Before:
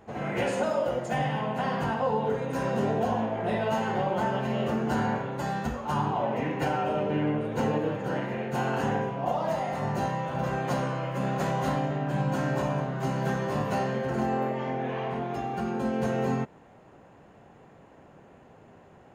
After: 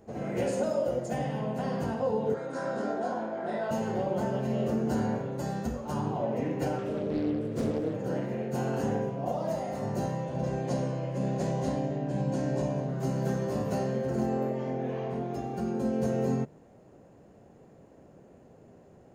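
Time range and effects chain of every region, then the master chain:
2.34–3.71 s: cabinet simulation 320–7900 Hz, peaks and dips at 460 Hz -7 dB, 1.4 kHz +9 dB, 2.7 kHz -8 dB, 6.2 kHz -7 dB + doubling 24 ms -4 dB
6.78–7.94 s: peaking EQ 760 Hz -11.5 dB 0.61 oct + loudspeaker Doppler distortion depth 0.66 ms
10.24–12.89 s: low-pass 8.3 kHz + peaking EQ 1.3 kHz -9 dB 0.31 oct
whole clip: high-order bell 1.7 kHz -9.5 dB 2.5 oct; hum notches 50/100/150 Hz

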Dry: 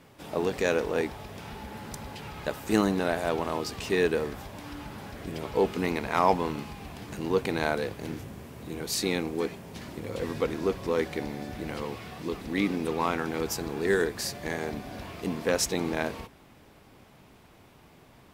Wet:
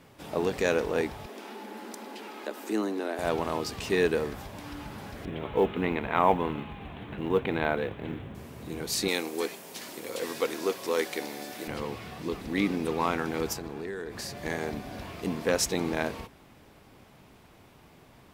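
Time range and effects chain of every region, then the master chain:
1.26–3.19 s: Chebyshev high-pass 210 Hz, order 6 + peaking EQ 360 Hz +7 dB 0.56 oct + compression 1.5:1, threshold -38 dBFS
5.25–8.35 s: steep low-pass 3.7 kHz 72 dB/octave + companded quantiser 8-bit
9.08–11.68 s: high-pass 320 Hz + treble shelf 4.2 kHz +12 dB + short-mantissa float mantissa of 6-bit
13.53–14.37 s: treble shelf 4.5 kHz -6 dB + compression 10:1, threshold -32 dBFS
whole clip: none

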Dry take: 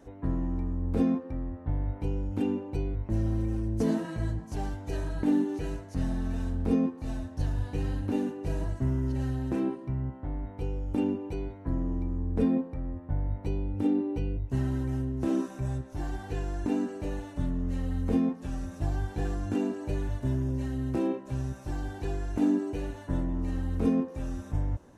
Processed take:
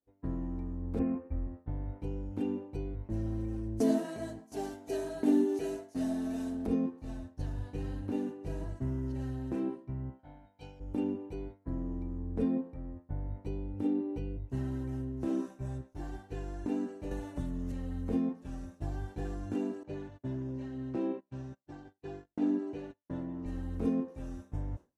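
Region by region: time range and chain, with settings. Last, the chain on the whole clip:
0.99–1.47 s: CVSD coder 64 kbps + steep low-pass 2.7 kHz 96 dB/octave + resonant low shelf 100 Hz +6.5 dB, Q 3
3.80–6.67 s: tilt EQ +3.5 dB/octave + small resonant body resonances 260/390/640 Hz, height 14 dB
10.19–10.80 s: high-pass 260 Hz 6 dB/octave + peaking EQ 4 kHz +12 dB 1.5 oct + comb 1.3 ms, depth 71%
17.11–17.72 s: treble shelf 5.1 kHz +9 dB + three bands compressed up and down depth 100%
19.83–23.46 s: band-pass 120–5100 Hz + gate -40 dBFS, range -19 dB
whole clip: peaking EQ 350 Hz +3.5 dB 2.2 oct; expander -31 dBFS; trim -8 dB

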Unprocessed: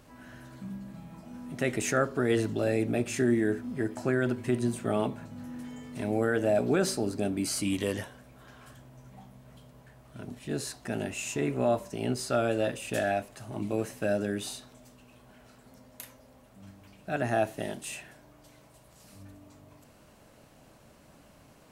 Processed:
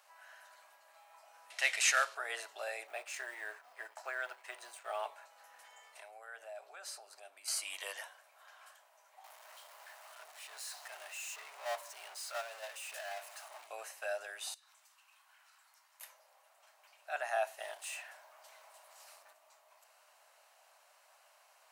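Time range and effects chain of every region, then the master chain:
1.50–2.15 s: CVSD coder 64 kbps + frequency weighting D
2.87–5.06 s: companding laws mixed up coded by A + peaking EQ 10 kHz -4.5 dB 1.3 oct
5.68–7.48 s: compression 4:1, threshold -37 dBFS + tape noise reduction on one side only decoder only
9.24–13.67 s: bass shelf 280 Hz -9.5 dB + power-law waveshaper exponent 0.35 + gate -22 dBFS, range -15 dB
14.54–16.01 s: high-pass 950 Hz 24 dB/octave + compression 8:1, threshold -57 dBFS
17.62–19.33 s: companding laws mixed up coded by mu + peaking EQ 13 kHz -4 dB 3 oct
whole clip: steep high-pass 670 Hz 36 dB/octave; band-stop 3.4 kHz, Q 23; trim -3.5 dB

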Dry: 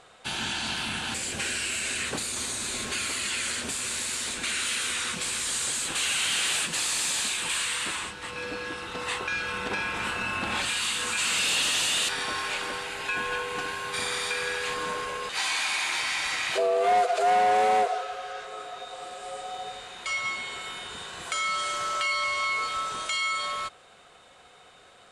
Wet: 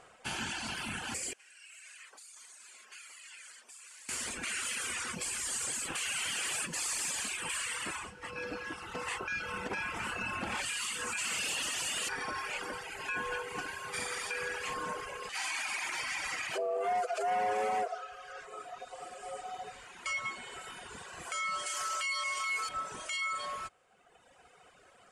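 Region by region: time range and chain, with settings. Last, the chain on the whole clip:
1.33–4.09 s: band-pass filter 860 Hz, Q 0.56 + differentiator
21.66–22.69 s: tilt EQ +3 dB/octave + word length cut 12-bit, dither triangular
whole clip: peaking EQ 3.8 kHz -13 dB 0.29 oct; reverb removal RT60 1.5 s; peak limiter -24 dBFS; trim -2.5 dB

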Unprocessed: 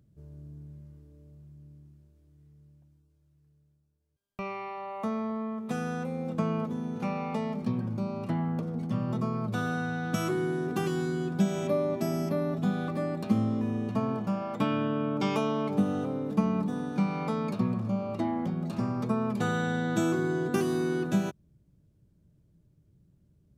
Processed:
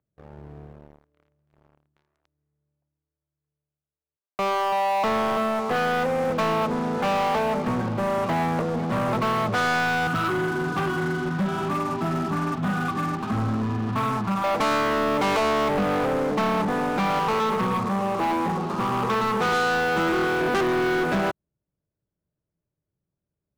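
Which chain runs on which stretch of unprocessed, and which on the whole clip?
1.63–5.76 s: median filter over 15 samples + bit-crushed delay 333 ms, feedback 35%, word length 9-bit, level -7.5 dB
10.07–14.44 s: bass shelf 180 Hz +9 dB + flange 1.5 Hz, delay 6 ms, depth 5.5 ms, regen -39% + static phaser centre 2.1 kHz, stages 6
17.19–20.41 s: static phaser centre 420 Hz, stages 8 + delay 112 ms -5 dB
whole clip: three-band isolator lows -15 dB, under 470 Hz, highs -24 dB, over 2.3 kHz; waveshaping leveller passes 5; trim +2.5 dB

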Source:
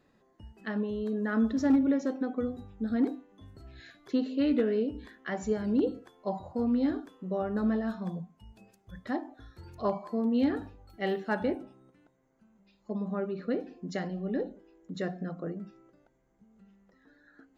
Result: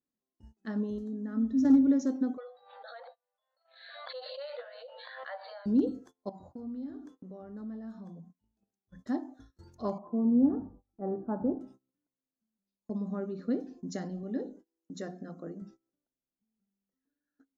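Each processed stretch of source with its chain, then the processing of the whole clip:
0.98–1.65 s: bass shelf 470 Hz +9 dB + upward compressor, threshold -21 dBFS + feedback comb 260 Hz, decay 0.28 s, harmonics odd, mix 80%
2.37–5.66 s: brick-wall FIR band-pass 490–4700 Hz + swell ahead of each attack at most 28 dB/s
6.29–8.99 s: treble shelf 5 kHz -8.5 dB + hum notches 60/120/180/240/300/360 Hz + compression 3:1, threshold -43 dBFS
9.98–11.61 s: steep low-pass 1.2 kHz + frequency-shifting echo 90 ms, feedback 35%, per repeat -65 Hz, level -21 dB
14.23–15.62 s: bass shelf 140 Hz -10 dB + hum notches 60/120/180/240/300/360/420/480 Hz
whole clip: fifteen-band graphic EQ 250 Hz +9 dB, 2.5 kHz -10 dB, 6.3 kHz +12 dB; gate -46 dBFS, range -25 dB; trim -5.5 dB

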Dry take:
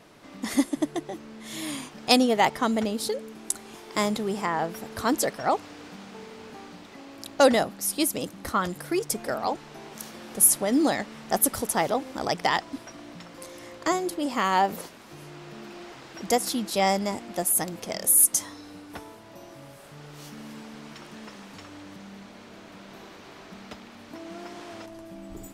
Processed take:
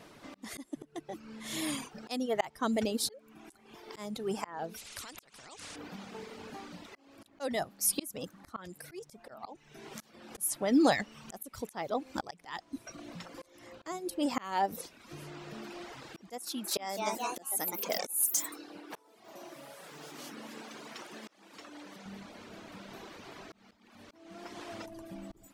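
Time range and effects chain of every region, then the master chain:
4.77–5.76 s: compression 16:1, threshold -33 dBFS + low-pass 8.9 kHz 24 dB/octave + spectrum-flattening compressor 4:1
16.39–22.06 s: high-pass 280 Hz + ever faster or slower copies 250 ms, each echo +2 st, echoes 3, each echo -6 dB
whole clip: reverb removal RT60 0.85 s; slow attack 497 ms

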